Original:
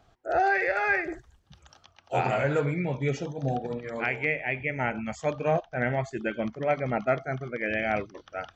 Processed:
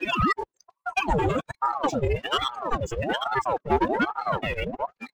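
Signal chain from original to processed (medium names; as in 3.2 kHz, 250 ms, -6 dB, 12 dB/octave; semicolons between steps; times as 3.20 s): slices played last to first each 180 ms, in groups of 5; spectral noise reduction 23 dB; waveshaping leveller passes 2; time stretch by phase-locked vocoder 0.6×; ring modulator with a swept carrier 660 Hz, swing 65%, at 1.2 Hz; trim +3.5 dB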